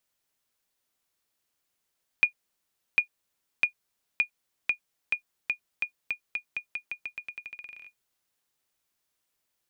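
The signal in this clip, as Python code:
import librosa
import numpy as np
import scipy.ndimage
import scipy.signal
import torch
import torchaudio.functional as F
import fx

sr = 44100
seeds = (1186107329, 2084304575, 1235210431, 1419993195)

y = fx.bouncing_ball(sr, first_gap_s=0.75, ratio=0.87, hz=2440.0, decay_ms=98.0, level_db=-10.0)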